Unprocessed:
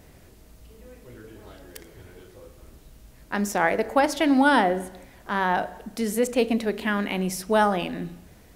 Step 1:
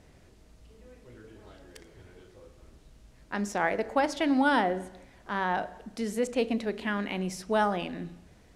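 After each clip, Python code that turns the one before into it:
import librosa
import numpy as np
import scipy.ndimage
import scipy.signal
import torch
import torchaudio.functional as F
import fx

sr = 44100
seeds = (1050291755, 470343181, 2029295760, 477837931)

y = scipy.signal.sosfilt(scipy.signal.butter(2, 7900.0, 'lowpass', fs=sr, output='sos'), x)
y = y * 10.0 ** (-5.5 / 20.0)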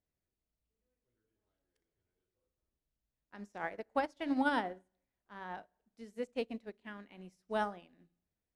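y = fx.upward_expand(x, sr, threshold_db=-41.0, expansion=2.5)
y = y * 10.0 ** (-5.5 / 20.0)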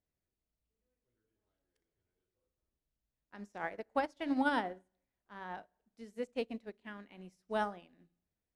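y = x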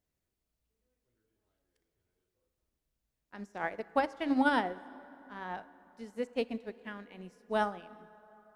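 y = fx.rev_plate(x, sr, seeds[0], rt60_s=3.9, hf_ratio=0.5, predelay_ms=0, drr_db=17.5)
y = y * 10.0 ** (4.0 / 20.0)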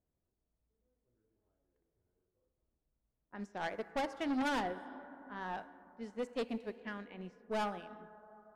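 y = 10.0 ** (-32.0 / 20.0) * np.tanh(x / 10.0 ** (-32.0 / 20.0))
y = fx.env_lowpass(y, sr, base_hz=930.0, full_db=-38.5)
y = y * 10.0 ** (1.0 / 20.0)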